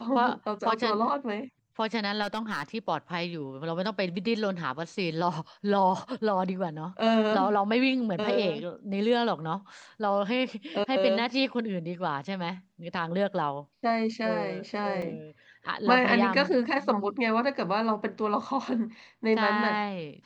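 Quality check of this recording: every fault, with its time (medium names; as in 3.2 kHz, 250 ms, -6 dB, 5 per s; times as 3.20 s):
2.22–2.63 s: clipped -24 dBFS
15.02 s: dropout 3.2 ms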